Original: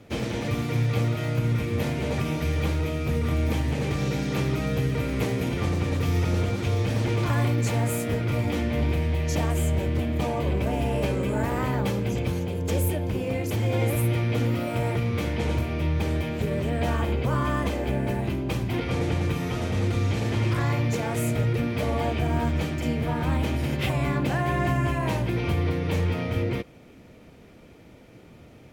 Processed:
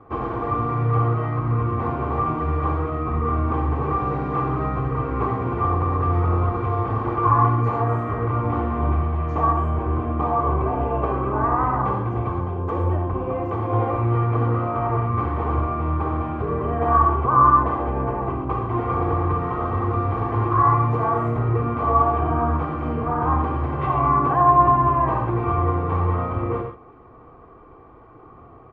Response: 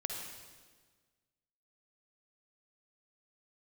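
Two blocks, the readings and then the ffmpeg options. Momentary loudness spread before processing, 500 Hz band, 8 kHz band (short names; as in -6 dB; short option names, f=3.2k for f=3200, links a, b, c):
3 LU, +3.0 dB, under -30 dB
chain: -filter_complex "[0:a]lowpass=f=1.1k:t=q:w=12,aecho=1:1:2.6:0.53[a];[1:a]atrim=start_sample=2205,atrim=end_sample=6174[b];[a][b]afir=irnorm=-1:irlink=0"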